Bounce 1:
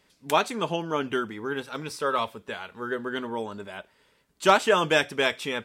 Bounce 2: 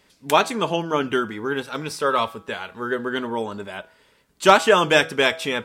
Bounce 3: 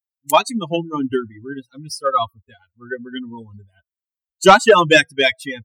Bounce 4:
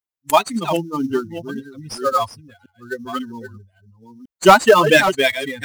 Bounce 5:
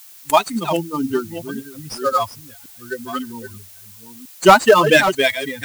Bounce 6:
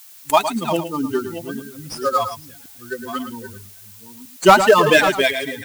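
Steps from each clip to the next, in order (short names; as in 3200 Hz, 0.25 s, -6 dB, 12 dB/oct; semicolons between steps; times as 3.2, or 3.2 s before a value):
de-hum 162.3 Hz, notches 10; gain +5.5 dB
per-bin expansion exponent 3; in parallel at -9 dB: sine folder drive 7 dB, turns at -4 dBFS; on the sum: gain +3.5 dB
reverse delay 0.532 s, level -9.5 dB; in parallel at -9.5 dB: sample-rate reducer 5800 Hz, jitter 20%; on the sum: gain -2.5 dB
added noise blue -43 dBFS
echo 0.11 s -10 dB; gain -1 dB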